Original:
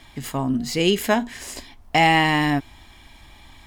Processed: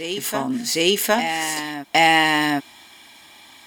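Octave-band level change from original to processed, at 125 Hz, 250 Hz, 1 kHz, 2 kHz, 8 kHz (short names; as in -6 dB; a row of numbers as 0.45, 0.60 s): -9.0, -1.5, +1.5, +3.0, +8.0 dB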